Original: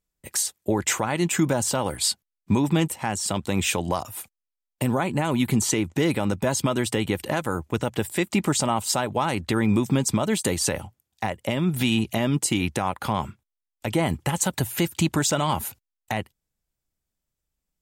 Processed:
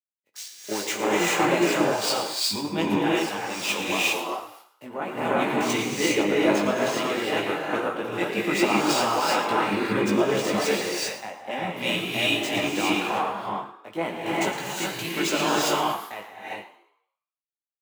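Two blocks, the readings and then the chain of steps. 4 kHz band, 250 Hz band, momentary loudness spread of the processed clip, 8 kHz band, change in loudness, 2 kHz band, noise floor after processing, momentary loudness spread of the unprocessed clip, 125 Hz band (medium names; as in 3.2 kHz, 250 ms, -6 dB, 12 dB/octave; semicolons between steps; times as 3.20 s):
+3.0 dB, -2.0 dB, 12 LU, -5.0 dB, 0.0 dB, +4.5 dB, under -85 dBFS, 7 LU, -10.5 dB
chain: median filter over 5 samples; high-pass 310 Hz 12 dB/octave; on a send: frequency-shifting echo 114 ms, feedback 57%, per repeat +65 Hz, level -9.5 dB; on the sum: chorus 1.7 Hz, delay 17 ms, depth 3.4 ms; gated-style reverb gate 430 ms rising, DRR -4.5 dB; dynamic bell 2.5 kHz, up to +4 dB, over -41 dBFS, Q 3.7; three bands expanded up and down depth 100%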